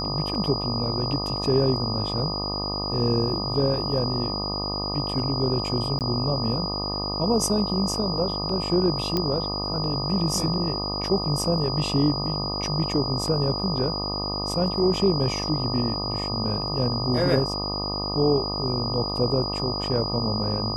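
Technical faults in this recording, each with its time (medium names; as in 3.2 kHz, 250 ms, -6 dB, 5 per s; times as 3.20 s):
buzz 50 Hz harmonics 25 -31 dBFS
whine 4.9 kHz -29 dBFS
5.99–6.01 s: dropout 18 ms
9.17 s: pop -11 dBFS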